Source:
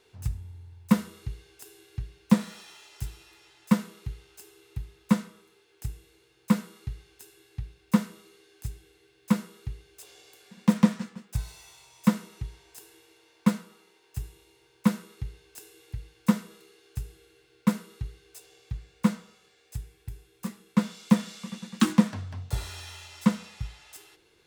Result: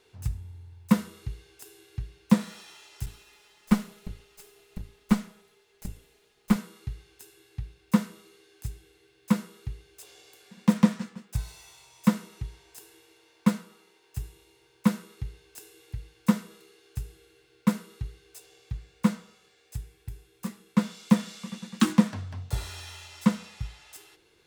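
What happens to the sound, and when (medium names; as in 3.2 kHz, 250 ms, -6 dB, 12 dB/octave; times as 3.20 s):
3.06–6.56 s: comb filter that takes the minimum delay 4.8 ms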